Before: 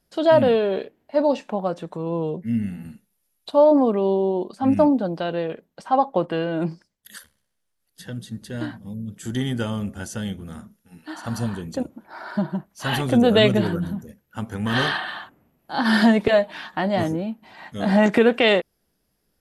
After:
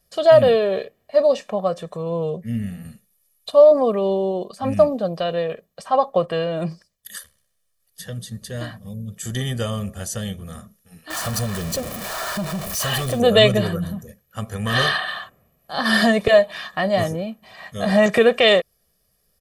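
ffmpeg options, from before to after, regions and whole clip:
ffmpeg -i in.wav -filter_complex "[0:a]asettb=1/sr,asplit=3[link_01][link_02][link_03];[link_01]atrim=end=11.104[link_04];[link_02]atrim=start=11.1:end=13.2,asetpts=PTS-STARTPTS,afade=type=in:duration=0.004:curve=qsin,afade=type=out:start_time=2.096:duration=0.004:curve=qsin,aeval=exprs='val(0)+0.5*0.0447*sgn(val(0))':channel_layout=same,acompressor=threshold=-24dB:ratio=2:attack=3.2:release=140:knee=1:detection=peak[link_05];[link_03]atrim=start=13.196[link_06];[link_04][link_05]acrossfade=duration=0.004:curve1=hsin:curve2=qsin[link_07];[link_07][link_06]acrossfade=duration=0.004:curve1=qsin:curve2=hsin,highshelf=frequency=4500:gain=7.5,aecho=1:1:1.7:0.7" out.wav

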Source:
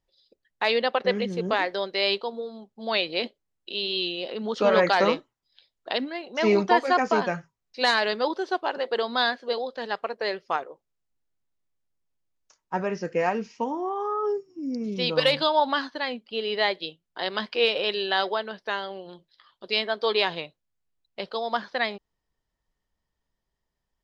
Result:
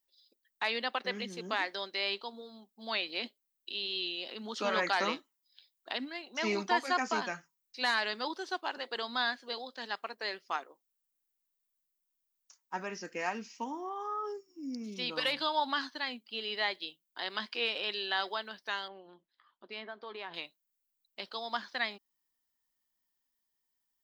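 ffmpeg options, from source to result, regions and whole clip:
ffmpeg -i in.wav -filter_complex "[0:a]asettb=1/sr,asplit=3[link_01][link_02][link_03];[link_01]atrim=end=18.884[link_04];[link_02]atrim=start=18.88:end=20.34,asetpts=PTS-STARTPTS,afade=type=in:duration=0.004:curve=qsin,afade=type=out:start_time=1.456:duration=0.004:curve=qsin,lowpass=1600,acompressor=threshold=-29dB:ratio=4:attack=3.2:release=140:knee=1:detection=peak[link_05];[link_03]atrim=start=20.336[link_06];[link_04][link_05]acrossfade=duration=0.004:curve1=hsin:curve2=qsin[link_07];[link_07][link_06]acrossfade=duration=0.004:curve1=qsin:curve2=hsin,aemphasis=mode=production:type=bsi,acrossover=split=2600[link_08][link_09];[link_09]acompressor=threshold=-29dB:ratio=4:attack=1:release=60[link_10];[link_08][link_10]amix=inputs=2:normalize=0,equalizer=frequency=125:width_type=o:width=1:gain=-12,equalizer=frequency=250:width_type=o:width=1:gain=6,equalizer=frequency=500:width_type=o:width=1:gain=-9,volume=-6dB" out.wav

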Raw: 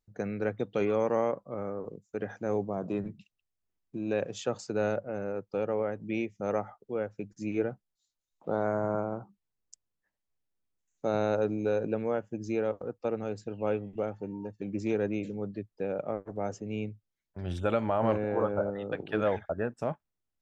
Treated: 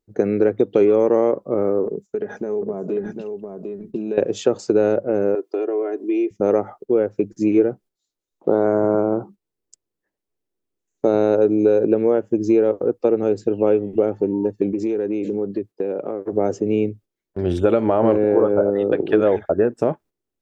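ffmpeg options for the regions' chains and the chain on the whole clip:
ffmpeg -i in.wav -filter_complex "[0:a]asettb=1/sr,asplit=3[link_01][link_02][link_03];[link_01]atrim=end=1.864[link_04];[link_02]atrim=start=1.86:end=4.18,asetpts=PTS-STARTPTS,afade=type=in:duration=0.004:curve=qsin,afade=type=out:start_time=2.316:duration=0.004:curve=qsin,aecho=1:1:4.8:0.51,atrim=end_sample=102312,acompressor=threshold=-39dB:ratio=12:attack=3.2:release=140:knee=1:detection=peak,aecho=1:1:750:0.501,atrim=end_sample=102312[link_05];[link_03]atrim=start=4.176[link_06];[link_04][link_05]acrossfade=duration=0.004:curve1=hsin:curve2=qsin[link_07];[link_07][link_06]acrossfade=duration=0.004:curve1=qsin:curve2=hsin,asettb=1/sr,asplit=3[link_08][link_09][link_10];[link_08]atrim=end=5.354[link_11];[link_09]atrim=start=5.35:end=6.31,asetpts=PTS-STARTPTS,afade=type=in:duration=0.004:curve=qsin,afade=type=out:start_time=0.956:duration=0.004:curve=qsin,highpass=frequency=300:width=0.5412,highpass=frequency=300:width=1.3066,aecho=1:1:2.9:0.87,atrim=end_sample=42336,acompressor=threshold=-40dB:ratio=4:attack=3.2:release=140:knee=1:detection=peak[link_12];[link_10]atrim=start=6.306[link_13];[link_11][link_12]acrossfade=duration=0.004:curve1=hsin:curve2=qsin[link_14];[link_14][link_13]acrossfade=duration=0.004:curve1=qsin:curve2=hsin,asettb=1/sr,asplit=3[link_15][link_16][link_17];[link_15]atrim=end=14.734[link_18];[link_16]atrim=start=14.73:end=16.33,asetpts=PTS-STARTPTS,afade=type=in:duration=0.004:curve=qsin,afade=type=out:start_time=1.596:duration=0.004:curve=qsin,highpass=frequency=140:poles=1,bandreject=frequency=610:width=14,acompressor=threshold=-37dB:ratio=12:attack=3.2:release=140:knee=1:detection=peak[link_19];[link_17]atrim=start=16.326[link_20];[link_18][link_19]acrossfade=duration=0.004:curve1=hsin:curve2=qsin[link_21];[link_21][link_20]acrossfade=duration=0.004:curve1=qsin:curve2=hsin,agate=range=-8dB:threshold=-54dB:ratio=16:detection=peak,equalizer=frequency=370:width=1.2:gain=14.5,acompressor=threshold=-23dB:ratio=2.5,volume=8.5dB" out.wav

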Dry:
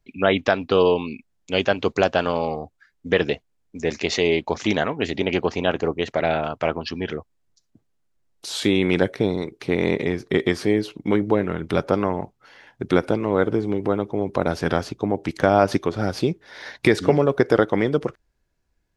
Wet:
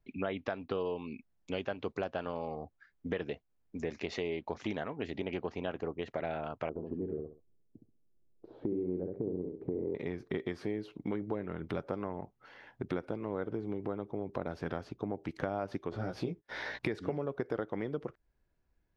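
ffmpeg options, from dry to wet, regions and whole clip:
ffmpeg -i in.wav -filter_complex "[0:a]asettb=1/sr,asplit=3[link_01][link_02][link_03];[link_01]atrim=end=6.694[link_04];[link_02]atrim=start=6.69:end=9.95,asetpts=PTS-STARTPTS,afade=type=in:duration=0.004:curve=qsin,afade=type=out:start_time=3.256:duration=0.004:curve=qsin,acompressor=threshold=-24dB:ratio=1.5:attack=3.2:release=140:knee=1:detection=peak,lowpass=frequency=410:width_type=q:width=1.8,aecho=1:1:66|132|198:0.562|0.129|0.0297,atrim=end_sample=143766[link_05];[link_03]atrim=start=9.946[link_06];[link_04][link_05]acrossfade=duration=0.004:curve1=hsin:curve2=qsin[link_07];[link_07][link_06]acrossfade=duration=0.004:curve1=qsin:curve2=hsin,asettb=1/sr,asplit=3[link_08][link_09][link_10];[link_08]atrim=end=15.924[link_11];[link_09]atrim=start=15.92:end=16.79,asetpts=PTS-STARTPTS,afade=type=in:duration=0.004:curve=qsin,afade=type=out:start_time=0.866:duration=0.004:curve=qsin,agate=range=-45dB:threshold=-45dB:ratio=16:release=100:detection=peak,acompressor=mode=upward:threshold=-25dB:ratio=2.5:attack=3.2:release=140:knee=2.83:detection=peak,asplit=2[link_12][link_13];[link_13]adelay=17,volume=-4dB[link_14];[link_12][link_14]amix=inputs=2:normalize=0,atrim=end_sample=38367[link_15];[link_10]atrim=start=16.786[link_16];[link_11][link_15]acrossfade=duration=0.004:curve1=hsin:curve2=qsin[link_17];[link_17][link_16]acrossfade=duration=0.004:curve1=qsin:curve2=hsin,equalizer=frequency=9600:width=0.41:gain=-13.5,acompressor=threshold=-32dB:ratio=3,volume=-4dB" out.wav

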